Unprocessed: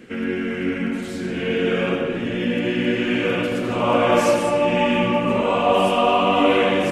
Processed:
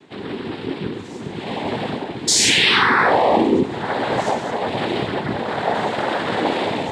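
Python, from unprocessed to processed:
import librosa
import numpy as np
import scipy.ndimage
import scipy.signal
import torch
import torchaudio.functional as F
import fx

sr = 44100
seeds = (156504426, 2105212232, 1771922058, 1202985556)

y = fx.spec_paint(x, sr, seeds[0], shape='fall', start_s=2.27, length_s=1.36, low_hz=230.0, high_hz=6100.0, level_db=-12.0)
y = fx.noise_vocoder(y, sr, seeds[1], bands=6)
y = F.gain(torch.from_numpy(y), -3.5).numpy()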